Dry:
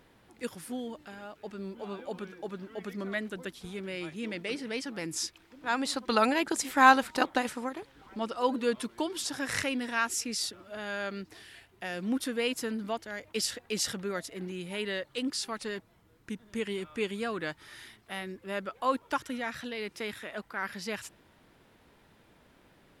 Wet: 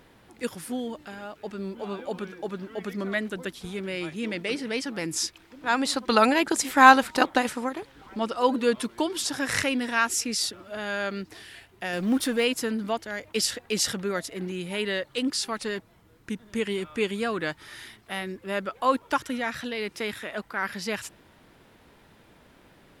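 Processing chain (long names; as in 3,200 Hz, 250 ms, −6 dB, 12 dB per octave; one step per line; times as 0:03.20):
0:11.93–0:12.45: mu-law and A-law mismatch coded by mu
level +5.5 dB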